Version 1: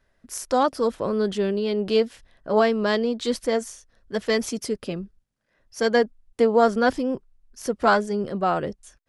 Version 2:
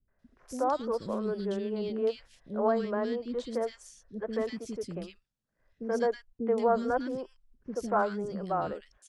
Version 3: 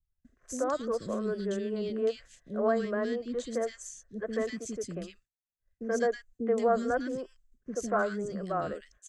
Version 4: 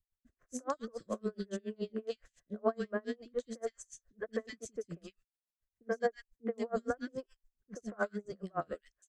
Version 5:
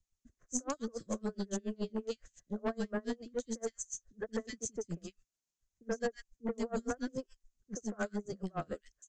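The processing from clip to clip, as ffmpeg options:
-filter_complex "[0:a]lowpass=9.7k,acrossover=split=620|1500[a][b][c];[c]acompressor=threshold=-41dB:ratio=6[d];[a][b][d]amix=inputs=3:normalize=0,acrossover=split=320|2000[e][f][g];[f]adelay=80[h];[g]adelay=190[i];[e][h][i]amix=inputs=3:normalize=0,volume=-6.5dB"
-filter_complex "[0:a]agate=range=-33dB:threshold=-55dB:ratio=3:detection=peak,superequalizer=9b=0.355:11b=1.58:15b=3.16,acrossover=split=130|4800[a][b][c];[a]acompressor=mode=upward:threshold=-59dB:ratio=2.5[d];[d][b][c]amix=inputs=3:normalize=0"
-af "aeval=exprs='val(0)*pow(10,-35*(0.5-0.5*cos(2*PI*7.1*n/s))/20)':c=same"
-filter_complex "[0:a]acrossover=split=330|1600[a][b][c];[a]aeval=exprs='0.0376*(cos(1*acos(clip(val(0)/0.0376,-1,1)))-cos(1*PI/2))+0.0106*(cos(5*acos(clip(val(0)/0.0376,-1,1)))-cos(5*PI/2))+0.00531*(cos(8*acos(clip(val(0)/0.0376,-1,1)))-cos(8*PI/2))':c=same[d];[b]asoftclip=type=tanh:threshold=-32.5dB[e];[c]lowpass=f=6.7k:t=q:w=4.5[f];[d][e][f]amix=inputs=3:normalize=0,volume=-1dB"

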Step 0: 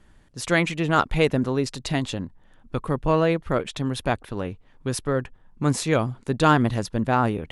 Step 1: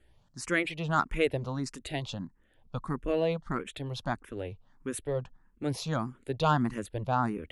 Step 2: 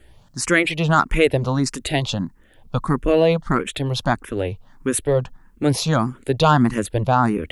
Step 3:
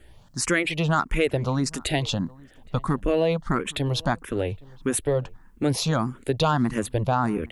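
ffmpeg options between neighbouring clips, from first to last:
-filter_complex "[0:a]asplit=2[a][b];[b]afreqshift=1.6[c];[a][c]amix=inputs=2:normalize=1,volume=-5.5dB"
-filter_complex "[0:a]highshelf=f=7.5k:g=4,asplit=2[a][b];[b]alimiter=limit=-22.5dB:level=0:latency=1:release=137,volume=0dB[c];[a][c]amix=inputs=2:normalize=0,volume=7.5dB"
-filter_complex "[0:a]acompressor=threshold=-21dB:ratio=2,asplit=2[a][b];[b]adelay=816.3,volume=-24dB,highshelf=f=4k:g=-18.4[c];[a][c]amix=inputs=2:normalize=0,volume=-1dB"

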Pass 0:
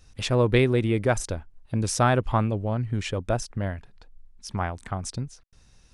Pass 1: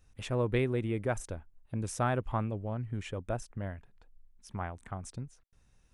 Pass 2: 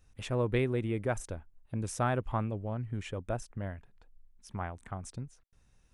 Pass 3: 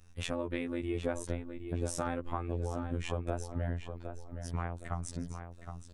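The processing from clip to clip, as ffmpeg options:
-af "equalizer=f=4.7k:t=o:w=0.85:g=-9,volume=-9dB"
-af anull
-filter_complex "[0:a]afftfilt=real='hypot(re,im)*cos(PI*b)':imag='0':win_size=2048:overlap=0.75,acompressor=threshold=-39dB:ratio=6,asplit=2[a][b];[b]adelay=766,lowpass=f=3.7k:p=1,volume=-8dB,asplit=2[c][d];[d]adelay=766,lowpass=f=3.7k:p=1,volume=0.38,asplit=2[e][f];[f]adelay=766,lowpass=f=3.7k:p=1,volume=0.38,asplit=2[g][h];[h]adelay=766,lowpass=f=3.7k:p=1,volume=0.38[i];[a][c][e][g][i]amix=inputs=5:normalize=0,volume=8dB"

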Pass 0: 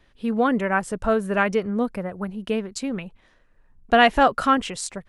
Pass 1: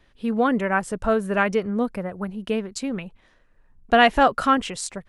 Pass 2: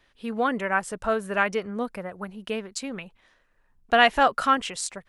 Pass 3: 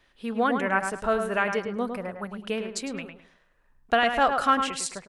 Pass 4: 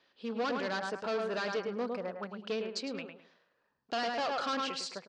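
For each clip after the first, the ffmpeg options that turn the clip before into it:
-af anull
-af "lowshelf=f=470:g=-9.5"
-filter_complex "[0:a]alimiter=limit=-10.5dB:level=0:latency=1:release=289,asplit=2[a][b];[b]adelay=105,lowpass=f=2.7k:p=1,volume=-6dB,asplit=2[c][d];[d]adelay=105,lowpass=f=2.7k:p=1,volume=0.29,asplit=2[e][f];[f]adelay=105,lowpass=f=2.7k:p=1,volume=0.29,asplit=2[g][h];[h]adelay=105,lowpass=f=2.7k:p=1,volume=0.29[i];[c][e][g][i]amix=inputs=4:normalize=0[j];[a][j]amix=inputs=2:normalize=0"
-af "asoftclip=type=hard:threshold=-26.5dB,highpass=200,equalizer=f=490:t=q:w=4:g=4,equalizer=f=2k:t=q:w=4:g=-4,equalizer=f=4.6k:t=q:w=4:g=7,lowpass=f=5.9k:w=0.5412,lowpass=f=5.9k:w=1.3066,volume=-4.5dB"

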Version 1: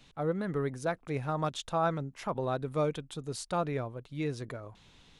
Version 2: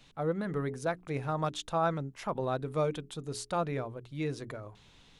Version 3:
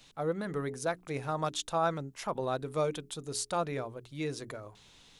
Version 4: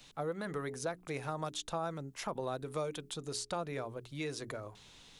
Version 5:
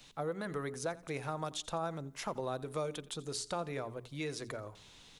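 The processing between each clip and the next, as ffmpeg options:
-af "bandreject=f=60:t=h:w=6,bandreject=f=120:t=h:w=6,bandreject=f=180:t=h:w=6,bandreject=f=240:t=h:w=6,bandreject=f=300:t=h:w=6,bandreject=f=360:t=h:w=6,bandreject=f=420:t=h:w=6"
-af "bass=f=250:g=-4,treble=f=4k:g=7"
-filter_complex "[0:a]acrossover=split=520|7500[a][b][c];[a]acompressor=threshold=-41dB:ratio=4[d];[b]acompressor=threshold=-39dB:ratio=4[e];[c]acompressor=threshold=-53dB:ratio=4[f];[d][e][f]amix=inputs=3:normalize=0,volume=1dB"
-af "aecho=1:1:86|172|258:0.1|0.038|0.0144"

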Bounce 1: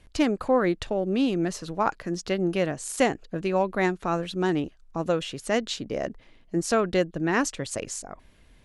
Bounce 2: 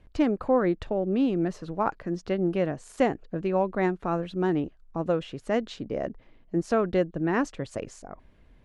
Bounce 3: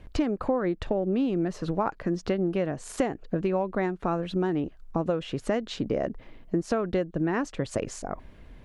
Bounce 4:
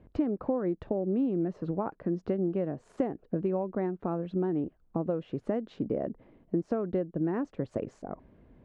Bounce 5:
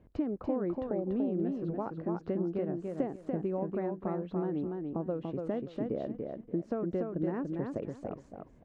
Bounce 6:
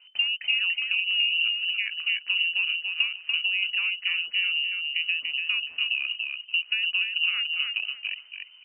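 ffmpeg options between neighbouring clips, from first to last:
-af "lowpass=f=1.2k:p=1"
-af "acompressor=threshold=-32dB:ratio=6,volume=8.5dB"
-af "bandpass=f=270:t=q:w=0.54:csg=0,volume=-2dB"
-af "aecho=1:1:289|578|867:0.631|0.139|0.0305,volume=-4dB"
-af "lowpass=f=2.6k:t=q:w=0.5098,lowpass=f=2.6k:t=q:w=0.6013,lowpass=f=2.6k:t=q:w=0.9,lowpass=f=2.6k:t=q:w=2.563,afreqshift=-3100,volume=6.5dB"

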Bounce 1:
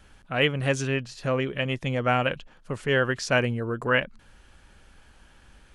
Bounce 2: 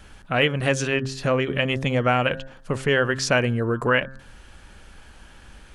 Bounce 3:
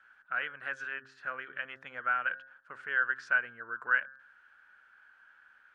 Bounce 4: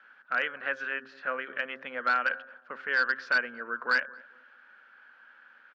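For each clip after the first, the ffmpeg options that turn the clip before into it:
-af "bandreject=f=133.1:t=h:w=4,bandreject=f=266.2:t=h:w=4,bandreject=f=399.3:t=h:w=4,bandreject=f=532.4:t=h:w=4,bandreject=f=665.5:t=h:w=4,bandreject=f=798.6:t=h:w=4,bandreject=f=931.7:t=h:w=4,bandreject=f=1.0648k:t=h:w=4,bandreject=f=1.1979k:t=h:w=4,bandreject=f=1.331k:t=h:w=4,bandreject=f=1.4641k:t=h:w=4,bandreject=f=1.5972k:t=h:w=4,bandreject=f=1.7303k:t=h:w=4,bandreject=f=1.8634k:t=h:w=4,acompressor=threshold=-27dB:ratio=2,volume=7.5dB"
-af "bandpass=f=1.5k:t=q:w=8:csg=0"
-filter_complex "[0:a]asoftclip=type=hard:threshold=-24dB,highpass=f=180:w=0.5412,highpass=f=180:w=1.3066,equalizer=f=240:t=q:w=4:g=7,equalizer=f=520:t=q:w=4:g=6,equalizer=f=1.5k:t=q:w=4:g=-3,lowpass=f=5k:w=0.5412,lowpass=f=5k:w=1.3066,asplit=2[a][b];[b]adelay=224,lowpass=f=800:p=1,volume=-19dB,asplit=2[c][d];[d]adelay=224,lowpass=f=800:p=1,volume=0.39,asplit=2[e][f];[f]adelay=224,lowpass=f=800:p=1,volume=0.39[g];[a][c][e][g]amix=inputs=4:normalize=0,volume=6.5dB"

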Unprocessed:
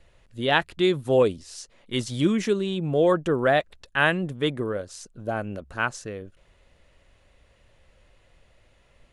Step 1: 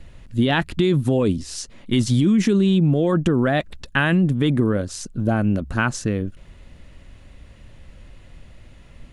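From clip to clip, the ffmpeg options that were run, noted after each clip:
-af "lowshelf=f=350:t=q:w=1.5:g=7.5,alimiter=limit=-14.5dB:level=0:latency=1:release=20,acompressor=threshold=-23dB:ratio=4,volume=8.5dB"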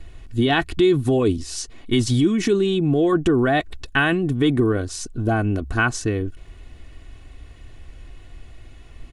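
-af "aecho=1:1:2.7:0.62"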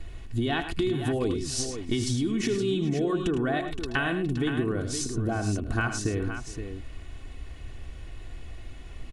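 -filter_complex "[0:a]acompressor=threshold=-25dB:ratio=6,asplit=2[a][b];[b]aecho=0:1:78|106|419|519:0.224|0.299|0.106|0.355[c];[a][c]amix=inputs=2:normalize=0"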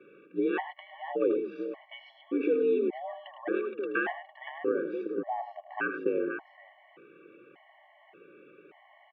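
-af "aemphasis=mode=reproduction:type=bsi,highpass=f=260:t=q:w=0.5412,highpass=f=260:t=q:w=1.307,lowpass=f=2.7k:t=q:w=0.5176,lowpass=f=2.7k:t=q:w=0.7071,lowpass=f=2.7k:t=q:w=1.932,afreqshift=65,afftfilt=real='re*gt(sin(2*PI*0.86*pts/sr)*(1-2*mod(floor(b*sr/1024/560),2)),0)':imag='im*gt(sin(2*PI*0.86*pts/sr)*(1-2*mod(floor(b*sr/1024/560),2)),0)':win_size=1024:overlap=0.75"

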